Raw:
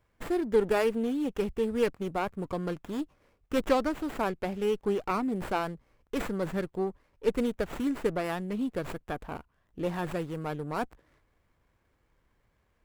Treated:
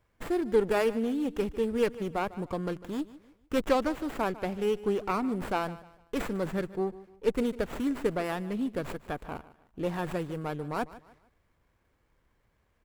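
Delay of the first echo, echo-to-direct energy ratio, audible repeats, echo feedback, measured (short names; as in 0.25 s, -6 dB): 0.15 s, -17.0 dB, 2, 34%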